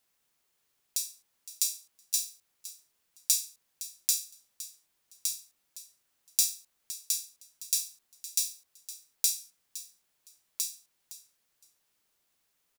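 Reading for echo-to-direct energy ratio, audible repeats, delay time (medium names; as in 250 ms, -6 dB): -15.0 dB, 2, 513 ms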